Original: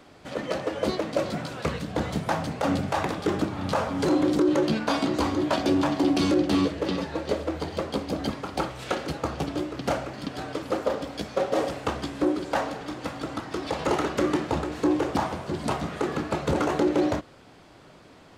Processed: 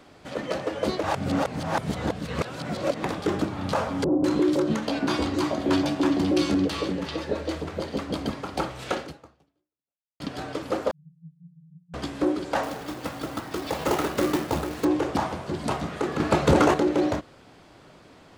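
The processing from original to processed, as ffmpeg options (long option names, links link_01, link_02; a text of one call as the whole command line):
ffmpeg -i in.wav -filter_complex "[0:a]asettb=1/sr,asplit=3[link_01][link_02][link_03];[link_01]atrim=end=4.044[link_04];[link_02]atrim=start=4.04:end=8.26,asetpts=PTS-STARTPTS,afade=type=in:duration=0.004:curve=qsin,afade=type=out:start_time=4.216:duration=0.004:curve=qsin,acrossover=split=790[link_05][link_06];[link_06]adelay=200[link_07];[link_05][link_07]amix=inputs=2:normalize=0,atrim=end_sample=186102[link_08];[link_03]atrim=start=8.256[link_09];[link_04][link_08]acrossfade=duration=0.004:curve1=hsin:curve2=qsin[link_10];[link_10][link_09]acrossfade=duration=0.004:curve1=qsin:curve2=hsin,asettb=1/sr,asplit=3[link_11][link_12][link_13];[link_11]atrim=end=10.914[link_14];[link_12]atrim=start=10.91:end=11.94,asetpts=PTS-STARTPTS,afade=type=in:duration=0.004:curve=qsin,afade=type=out:start_time=1.026:duration=0.004:curve=qsin,asuperpass=centerf=160:order=12:qfactor=5.1[link_15];[link_13]atrim=start=11.936[link_16];[link_14][link_15]acrossfade=duration=0.004:curve1=hsin:curve2=qsin[link_17];[link_17][link_16]acrossfade=duration=0.004:curve1=qsin:curve2=hsin,asettb=1/sr,asplit=3[link_18][link_19][link_20];[link_18]atrim=end=12.634[link_21];[link_19]atrim=start=12.63:end=14.85,asetpts=PTS-STARTPTS,afade=type=in:duration=0.004:curve=qsin,afade=type=out:start_time=2.216:duration=0.004:curve=qsin,acrusher=bits=3:mode=log:mix=0:aa=0.000001[link_22];[link_20]atrim=start=14.846[link_23];[link_21][link_22]acrossfade=duration=0.004:curve1=hsin:curve2=qsin[link_24];[link_24][link_23]acrossfade=duration=0.004:curve1=qsin:curve2=hsin,asplit=6[link_25][link_26][link_27][link_28][link_29][link_30];[link_25]atrim=end=1.032[link_31];[link_26]atrim=start=1.028:end=3.042,asetpts=PTS-STARTPTS,areverse[link_32];[link_27]atrim=start=3.038:end=10.2,asetpts=PTS-STARTPTS,afade=type=out:start_time=5.952:duration=1.21:curve=exp[link_33];[link_28]atrim=start=10.2:end=16.202,asetpts=PTS-STARTPTS,afade=type=in:duration=0.004:curve=hsin[link_34];[link_29]atrim=start=16.198:end=16.742,asetpts=PTS-STARTPTS,volume=6.5dB[link_35];[link_30]atrim=start=16.738[link_36];[link_31][link_32]acrossfade=duration=0.004:curve1=hsin:curve2=hsin[link_37];[link_33][link_34]concat=n=2:v=0:a=1[link_38];[link_37][link_38]acrossfade=duration=0.004:curve1=hsin:curve2=hsin[link_39];[link_39][link_35]acrossfade=duration=0.004:curve1=hsin:curve2=hsin[link_40];[link_40][link_36]acrossfade=duration=0.004:curve1=hsin:curve2=hsin" out.wav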